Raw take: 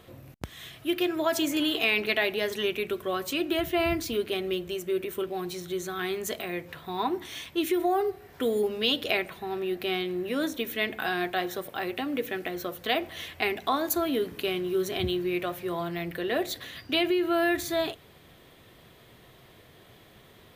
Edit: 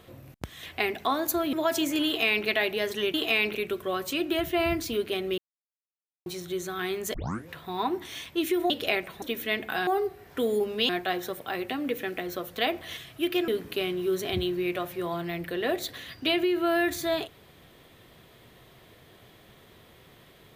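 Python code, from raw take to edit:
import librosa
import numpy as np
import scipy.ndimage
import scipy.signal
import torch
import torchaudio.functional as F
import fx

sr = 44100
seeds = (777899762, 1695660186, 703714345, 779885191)

y = fx.edit(x, sr, fx.swap(start_s=0.63, length_s=0.51, other_s=13.25, other_length_s=0.9),
    fx.duplicate(start_s=1.67, length_s=0.41, to_s=2.75),
    fx.silence(start_s=4.58, length_s=0.88),
    fx.tape_start(start_s=6.34, length_s=0.34),
    fx.move(start_s=7.9, length_s=1.02, to_s=11.17),
    fx.cut(start_s=9.44, length_s=1.08), tone=tone)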